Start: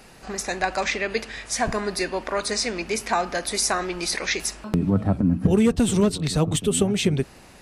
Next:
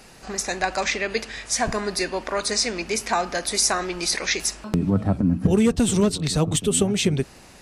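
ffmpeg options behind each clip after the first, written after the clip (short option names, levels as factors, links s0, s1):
-af "equalizer=f=6300:t=o:w=1.3:g=4"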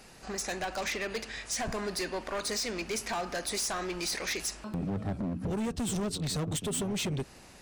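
-af "acompressor=threshold=0.1:ratio=3,asoftclip=type=hard:threshold=0.0668,volume=0.531"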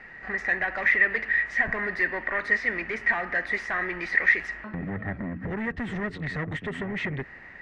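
-af "lowpass=f=1900:t=q:w=15"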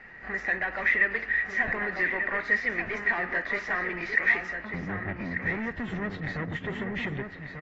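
-filter_complex "[0:a]asplit=2[s0][s1];[s1]adelay=1190,lowpass=f=4900:p=1,volume=0.447,asplit=2[s2][s3];[s3]adelay=1190,lowpass=f=4900:p=1,volume=0.16,asplit=2[s4][s5];[s5]adelay=1190,lowpass=f=4900:p=1,volume=0.16[s6];[s0][s2][s4][s6]amix=inputs=4:normalize=0,volume=0.75" -ar 24000 -c:a aac -b:a 24k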